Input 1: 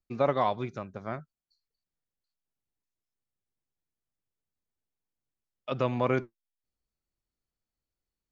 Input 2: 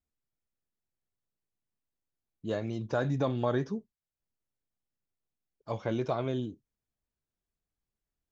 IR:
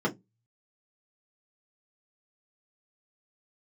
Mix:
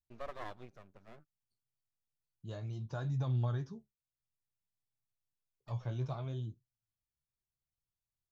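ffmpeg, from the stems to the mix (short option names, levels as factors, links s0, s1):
-filter_complex "[0:a]aeval=exprs='max(val(0),0)':c=same,volume=0.211[s0];[1:a]equalizer=f=125:t=o:w=1:g=10,equalizer=f=250:t=o:w=1:g=-8,equalizer=f=500:t=o:w=1:g=-8,equalizer=f=2000:t=o:w=1:g=-7,flanger=delay=8.1:depth=8.4:regen=52:speed=0.6:shape=sinusoidal,volume=0.668,asplit=2[s1][s2];[s2]apad=whole_len=366623[s3];[s0][s3]sidechaincompress=threshold=0.00282:ratio=8:attack=7.7:release=944[s4];[s4][s1]amix=inputs=2:normalize=0"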